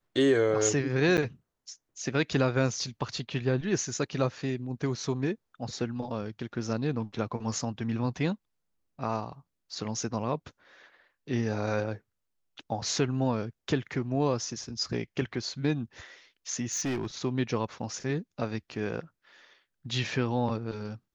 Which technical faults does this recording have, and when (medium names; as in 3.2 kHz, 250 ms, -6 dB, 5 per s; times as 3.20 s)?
1.17–1.18 s: dropout 8.8 ms
16.72–17.07 s: clipped -27 dBFS